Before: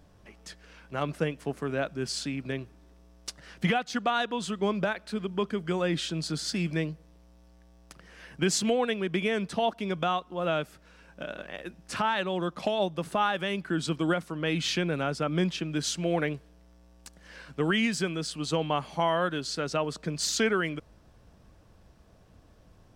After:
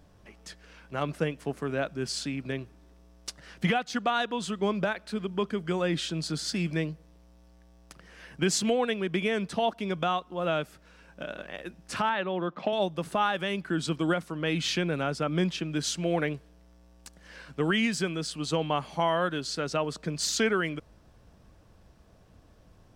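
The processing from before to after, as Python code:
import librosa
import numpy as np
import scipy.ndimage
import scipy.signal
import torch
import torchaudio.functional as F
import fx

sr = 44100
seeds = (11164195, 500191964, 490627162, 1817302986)

y = fx.bandpass_edges(x, sr, low_hz=150.0, high_hz=2800.0, at=(12.09, 12.73))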